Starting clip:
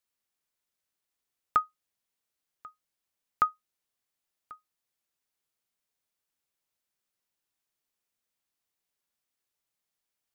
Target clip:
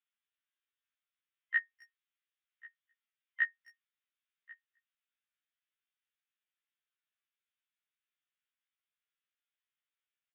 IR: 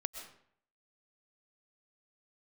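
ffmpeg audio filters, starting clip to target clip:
-filter_complex "[0:a]afftfilt=real='real(if(between(b,1,1008),(2*floor((b-1)/48)+1)*48-b,b),0)':imag='imag(if(between(b,1,1008),(2*floor((b-1)/48)+1)*48-b,b),0)*if(between(b,1,1008),-1,1)':win_size=2048:overlap=0.75,asuperpass=centerf=2600:order=8:qfactor=0.66,aresample=8000,aresample=44100,asplit=2[s0][s1];[s1]adelay=260,highpass=300,lowpass=3400,asoftclip=type=hard:threshold=0.0841,volume=0.0501[s2];[s0][s2]amix=inputs=2:normalize=0,afftfilt=real='re*1.73*eq(mod(b,3),0)':imag='im*1.73*eq(mod(b,3),0)':win_size=2048:overlap=0.75"

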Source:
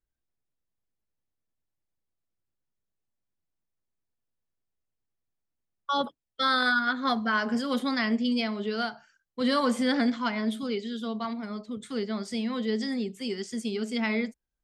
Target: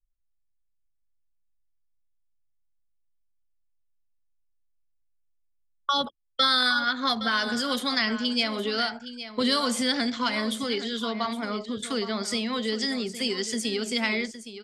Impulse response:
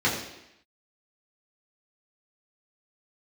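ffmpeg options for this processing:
-filter_complex "[0:a]acrossover=split=170|3000[s0][s1][s2];[s1]acompressor=threshold=0.02:ratio=6[s3];[s0][s3][s2]amix=inputs=3:normalize=0,lowshelf=f=430:g=-3.5,asplit=2[s4][s5];[s5]acompressor=threshold=0.00631:ratio=6,volume=1.06[s6];[s4][s6]amix=inputs=2:normalize=0,anlmdn=0.00398,adynamicequalizer=threshold=0.00398:dfrequency=190:dqfactor=0.92:tfrequency=190:tqfactor=0.92:attack=5:release=100:ratio=0.375:range=3:mode=cutabove:tftype=bell,asplit=2[s7][s8];[s8]aecho=0:1:815:0.237[s9];[s7][s9]amix=inputs=2:normalize=0,volume=2.51"

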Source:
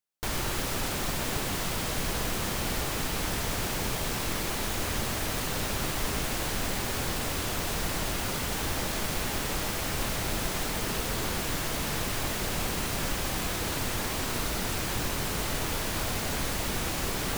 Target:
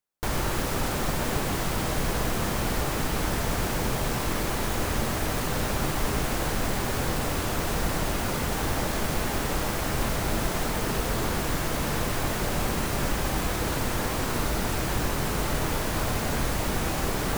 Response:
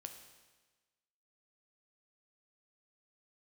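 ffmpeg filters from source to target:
-filter_complex "[0:a]asplit=2[s0][s1];[1:a]atrim=start_sample=2205,lowpass=2100[s2];[s1][s2]afir=irnorm=-1:irlink=0,volume=1.41[s3];[s0][s3]amix=inputs=2:normalize=0"

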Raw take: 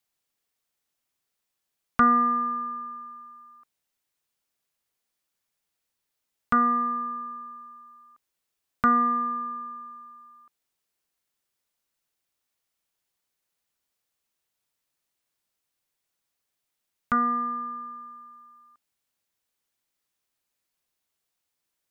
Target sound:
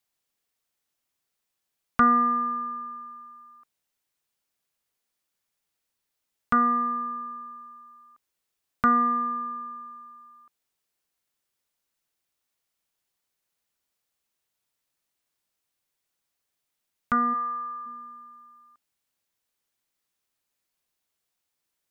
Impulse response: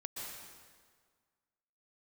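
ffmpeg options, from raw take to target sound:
-filter_complex "[0:a]asplit=3[s0][s1][s2];[s0]afade=t=out:st=17.33:d=0.02[s3];[s1]highpass=540,afade=t=in:st=17.33:d=0.02,afade=t=out:st=17.85:d=0.02[s4];[s2]afade=t=in:st=17.85:d=0.02[s5];[s3][s4][s5]amix=inputs=3:normalize=0"

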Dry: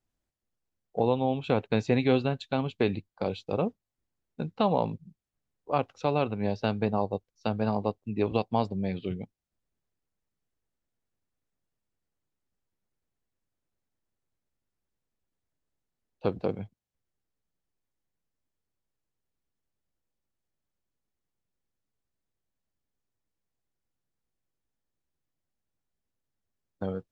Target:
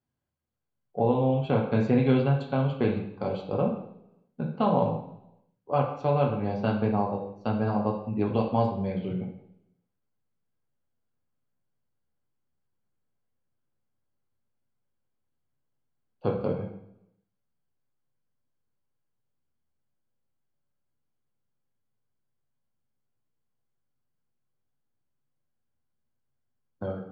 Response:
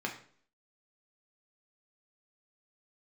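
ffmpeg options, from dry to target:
-filter_complex "[1:a]atrim=start_sample=2205,asetrate=28224,aresample=44100[s0];[0:a][s0]afir=irnorm=-1:irlink=0,volume=0.473"

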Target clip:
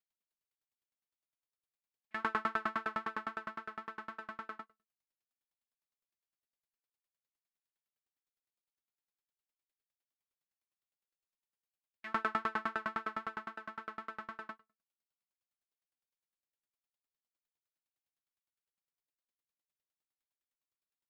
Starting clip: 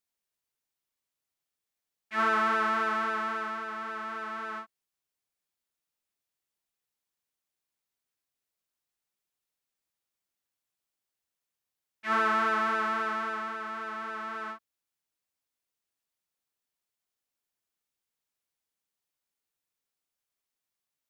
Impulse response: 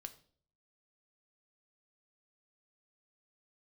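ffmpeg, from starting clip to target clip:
-filter_complex "[0:a]bandreject=f=5900:w=20,asplit=2[s0][s1];[1:a]atrim=start_sample=2205,afade=t=out:st=0.3:d=0.01,atrim=end_sample=13671,lowpass=5800[s2];[s1][s2]afir=irnorm=-1:irlink=0,volume=1.12[s3];[s0][s3]amix=inputs=2:normalize=0,aeval=exprs='val(0)*pow(10,-35*if(lt(mod(9.8*n/s,1),2*abs(9.8)/1000),1-mod(9.8*n/s,1)/(2*abs(9.8)/1000),(mod(9.8*n/s,1)-2*abs(9.8)/1000)/(1-2*abs(9.8)/1000))/20)':c=same,volume=0.631"

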